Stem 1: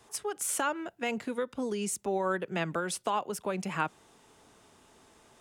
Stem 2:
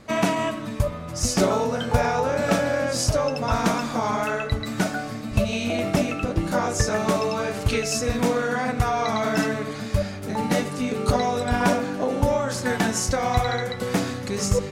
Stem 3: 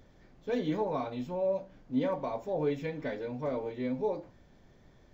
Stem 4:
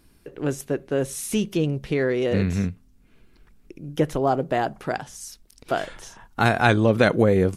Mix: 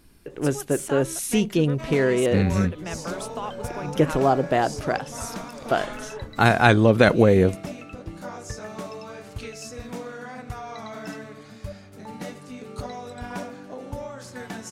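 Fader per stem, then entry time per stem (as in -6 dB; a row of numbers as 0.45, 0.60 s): -3.0, -13.0, -9.5, +2.0 dB; 0.30, 1.70, 2.10, 0.00 s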